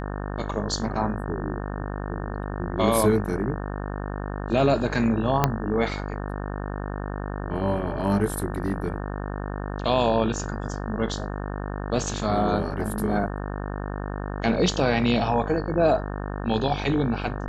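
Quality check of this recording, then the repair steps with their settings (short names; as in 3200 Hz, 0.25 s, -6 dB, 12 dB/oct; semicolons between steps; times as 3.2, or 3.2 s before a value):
buzz 50 Hz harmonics 36 -31 dBFS
5.44 pop -5 dBFS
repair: de-click; de-hum 50 Hz, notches 36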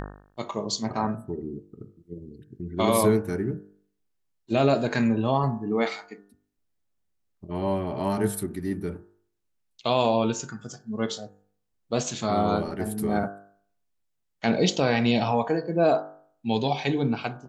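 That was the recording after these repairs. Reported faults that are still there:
5.44 pop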